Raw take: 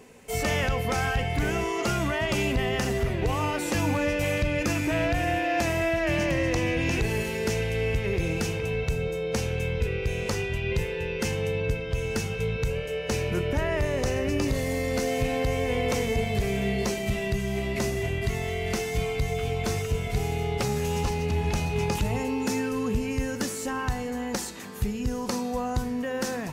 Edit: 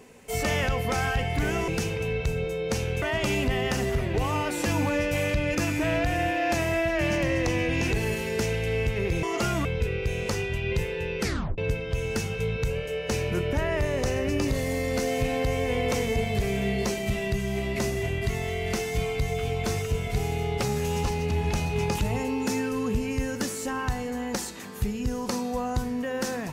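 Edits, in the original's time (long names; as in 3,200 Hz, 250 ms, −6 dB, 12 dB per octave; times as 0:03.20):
0:01.68–0:02.10: swap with 0:08.31–0:09.65
0:11.21: tape stop 0.37 s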